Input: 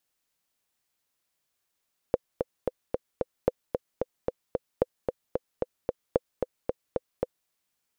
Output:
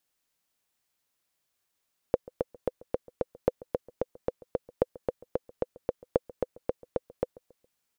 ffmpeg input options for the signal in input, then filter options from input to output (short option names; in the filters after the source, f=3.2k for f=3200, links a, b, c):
-f lavfi -i "aevalsrc='pow(10,(-8-5*gte(mod(t,5*60/224),60/224))/20)*sin(2*PI*506*mod(t,60/224))*exp(-6.91*mod(t,60/224)/0.03)':d=5.35:s=44100"
-filter_complex "[0:a]asplit=2[a][b];[b]adelay=138,lowpass=f=860:p=1,volume=-20.5dB,asplit=2[c][d];[d]adelay=138,lowpass=f=860:p=1,volume=0.45,asplit=2[e][f];[f]adelay=138,lowpass=f=860:p=1,volume=0.45[g];[a][c][e][g]amix=inputs=4:normalize=0"